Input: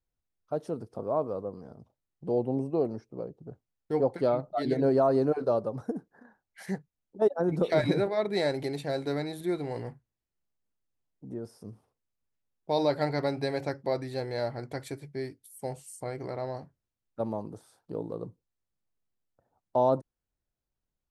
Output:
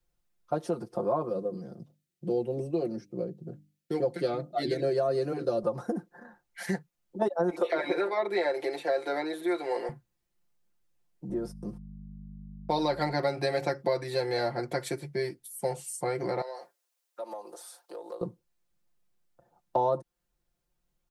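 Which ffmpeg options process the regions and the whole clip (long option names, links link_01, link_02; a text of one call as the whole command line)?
ffmpeg -i in.wav -filter_complex "[0:a]asettb=1/sr,asplit=3[link_01][link_02][link_03];[link_01]atrim=end=1.294[link_04];[link_02]atrim=start=1.29:end=5.63,asetpts=PTS-STARTPTS,afade=type=in:duration=0.004:curve=qsin,afade=type=out:start_time=4.336:duration=0.004:curve=qsin,highpass=96,equalizer=frequency=970:width=1.3:gain=-14.5,bandreject=frequency=50:width_type=h:width=6,bandreject=frequency=100:width_type=h:width=6,bandreject=frequency=150:width_type=h:width=6,bandreject=frequency=200:width_type=h:width=6,bandreject=frequency=250:width_type=h:width=6,bandreject=frequency=300:width_type=h:width=6[link_05];[link_03]atrim=start=5.626[link_06];[link_04][link_05]acrossfade=duration=0.004:curve1=hsin:curve2=qsin[link_07];[link_07][link_06]acrossfade=duration=0.004:curve1=qsin:curve2=hsin,asettb=1/sr,asplit=3[link_08][link_09][link_10];[link_08]atrim=end=7.504[link_11];[link_09]atrim=start=7.5:end=9.89,asetpts=PTS-STARTPTS,afade=type=in:duration=0.004:curve=qsin,afade=type=out:start_time=2.386:duration=0.004:curve=qsin,highpass=frequency=350:width=0.5412,highpass=frequency=350:width=1.3066,acrossover=split=2800[link_12][link_13];[link_13]acompressor=threshold=-56dB:ratio=4:attack=1:release=60[link_14];[link_12][link_14]amix=inputs=2:normalize=0[link_15];[link_10]atrim=start=9.886[link_16];[link_11][link_15]acrossfade=duration=0.004:curve1=hsin:curve2=qsin[link_17];[link_17][link_16]acrossfade=duration=0.004:curve1=qsin:curve2=hsin,asettb=1/sr,asplit=3[link_18][link_19][link_20];[link_18]atrim=end=11.294[link_21];[link_19]atrim=start=11.29:end=13.12,asetpts=PTS-STARTPTS,afade=type=in:duration=0.004:curve=qsin,afade=type=out:start_time=1.826:duration=0.004:curve=qsin,agate=range=-30dB:threshold=-54dB:ratio=16:release=100:detection=peak,aeval=exprs='val(0)+0.00708*(sin(2*PI*50*n/s)+sin(2*PI*2*50*n/s)/2+sin(2*PI*3*50*n/s)/3+sin(2*PI*4*50*n/s)/4+sin(2*PI*5*50*n/s)/5)':channel_layout=same[link_22];[link_20]atrim=start=13.116[link_23];[link_21][link_22]acrossfade=duration=0.004:curve1=hsin:curve2=qsin[link_24];[link_24][link_23]acrossfade=duration=0.004:curve1=qsin:curve2=hsin,asettb=1/sr,asplit=3[link_25][link_26][link_27];[link_25]atrim=end=16.414[link_28];[link_26]atrim=start=16.41:end=18.21,asetpts=PTS-STARTPTS,afade=type=in:duration=0.004:curve=qsin,afade=type=out:start_time=1.796:duration=0.004:curve=qsin,highpass=frequency=460:width=0.5412,highpass=frequency=460:width=1.3066,acompressor=threshold=-47dB:ratio=2.5:attack=3.2:release=140:knee=1:detection=peak,highshelf=frequency=3700:gain=8.5[link_29];[link_27]atrim=start=18.206[link_30];[link_28][link_29]acrossfade=duration=0.004:curve1=hsin:curve2=qsin[link_31];[link_31][link_30]acrossfade=duration=0.004:curve1=qsin:curve2=hsin,aecho=1:1:5.7:0.88,acrossover=split=170|720[link_32][link_33][link_34];[link_32]acompressor=threshold=-53dB:ratio=4[link_35];[link_33]acompressor=threshold=-34dB:ratio=4[link_36];[link_34]acompressor=threshold=-36dB:ratio=4[link_37];[link_35][link_36][link_37]amix=inputs=3:normalize=0,volume=5dB" out.wav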